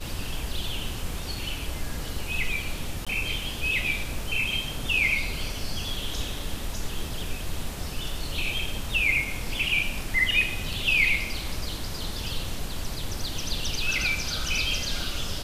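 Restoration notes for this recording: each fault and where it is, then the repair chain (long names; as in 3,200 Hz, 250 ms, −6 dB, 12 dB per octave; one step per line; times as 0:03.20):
0:03.05–0:03.07: drop-out 16 ms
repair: repair the gap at 0:03.05, 16 ms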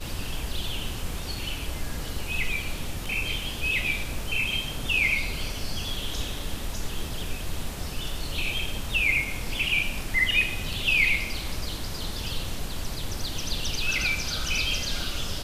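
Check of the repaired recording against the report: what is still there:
none of them is left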